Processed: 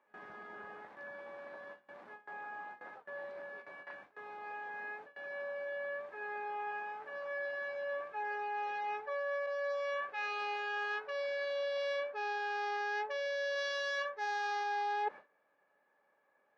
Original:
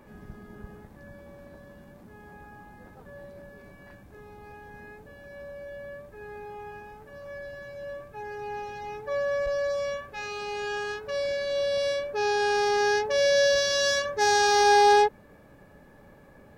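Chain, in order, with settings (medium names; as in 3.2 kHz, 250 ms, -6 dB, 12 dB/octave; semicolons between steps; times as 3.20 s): low-pass 2.5 kHz 12 dB/octave; gate with hold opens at -39 dBFS; high-pass 760 Hz 12 dB/octave; reverse; compression 8:1, threshold -41 dBFS, peak gain reduction 20.5 dB; reverse; trim +6.5 dB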